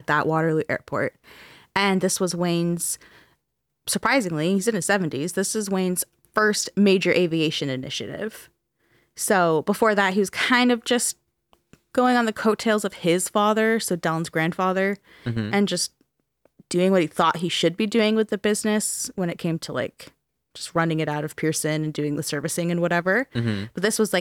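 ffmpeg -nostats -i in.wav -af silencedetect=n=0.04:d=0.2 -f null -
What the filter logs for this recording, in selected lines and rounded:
silence_start: 1.08
silence_end: 1.76 | silence_duration: 0.68
silence_start: 2.95
silence_end: 3.88 | silence_duration: 0.93
silence_start: 6.03
silence_end: 6.37 | silence_duration: 0.34
silence_start: 8.28
silence_end: 9.19 | silence_duration: 0.91
silence_start: 11.11
silence_end: 11.95 | silence_duration: 0.84
silence_start: 14.94
silence_end: 15.26 | silence_duration: 0.32
silence_start: 15.86
silence_end: 16.71 | silence_duration: 0.85
silence_start: 20.01
silence_end: 20.56 | silence_duration: 0.56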